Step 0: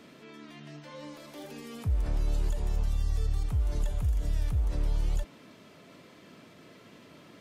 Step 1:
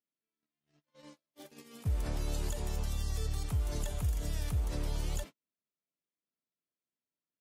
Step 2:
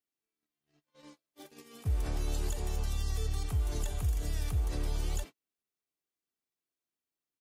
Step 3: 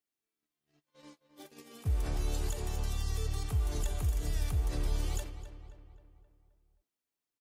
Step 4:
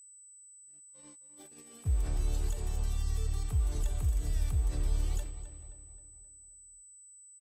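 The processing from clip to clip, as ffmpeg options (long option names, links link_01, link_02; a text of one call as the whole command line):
ffmpeg -i in.wav -af "highpass=frequency=82:poles=1,agate=range=-49dB:threshold=-41dB:ratio=16:detection=peak,highshelf=frequency=4400:gain=8" out.wav
ffmpeg -i in.wav -af "aecho=1:1:2.6:0.34" out.wav
ffmpeg -i in.wav -filter_complex "[0:a]asplit=2[link_01][link_02];[link_02]adelay=263,lowpass=frequency=2900:poles=1,volume=-11dB,asplit=2[link_03][link_04];[link_04]adelay=263,lowpass=frequency=2900:poles=1,volume=0.53,asplit=2[link_05][link_06];[link_06]adelay=263,lowpass=frequency=2900:poles=1,volume=0.53,asplit=2[link_07][link_08];[link_08]adelay=263,lowpass=frequency=2900:poles=1,volume=0.53,asplit=2[link_09][link_10];[link_10]adelay=263,lowpass=frequency=2900:poles=1,volume=0.53,asplit=2[link_11][link_12];[link_12]adelay=263,lowpass=frequency=2900:poles=1,volume=0.53[link_13];[link_01][link_03][link_05][link_07][link_09][link_11][link_13]amix=inputs=7:normalize=0" out.wav
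ffmpeg -i in.wav -filter_complex "[0:a]lowshelf=frequency=130:gain=8,asplit=2[link_01][link_02];[link_02]adelay=431.5,volume=-21dB,highshelf=frequency=4000:gain=-9.71[link_03];[link_01][link_03]amix=inputs=2:normalize=0,aeval=exprs='val(0)+0.00447*sin(2*PI*8000*n/s)':channel_layout=same,volume=-5dB" out.wav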